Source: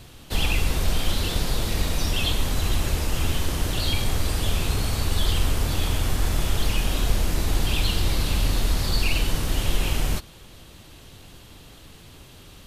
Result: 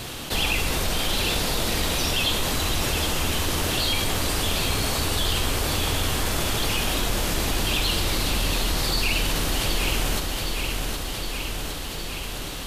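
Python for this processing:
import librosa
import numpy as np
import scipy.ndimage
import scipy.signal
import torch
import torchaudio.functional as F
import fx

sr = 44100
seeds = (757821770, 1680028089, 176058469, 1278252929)

p1 = fx.low_shelf(x, sr, hz=170.0, db=-10.5)
p2 = p1 + fx.echo_feedback(p1, sr, ms=765, feedback_pct=54, wet_db=-8.0, dry=0)
p3 = fx.env_flatten(p2, sr, amount_pct=50)
y = F.gain(torch.from_numpy(p3), 1.5).numpy()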